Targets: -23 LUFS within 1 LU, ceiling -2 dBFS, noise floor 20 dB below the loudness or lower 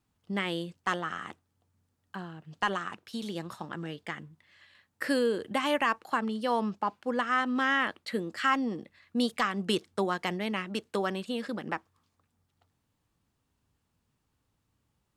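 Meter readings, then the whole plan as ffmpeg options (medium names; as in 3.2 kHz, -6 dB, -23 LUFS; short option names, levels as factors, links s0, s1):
loudness -31.0 LUFS; peak level -15.0 dBFS; loudness target -23.0 LUFS
-> -af "volume=2.51"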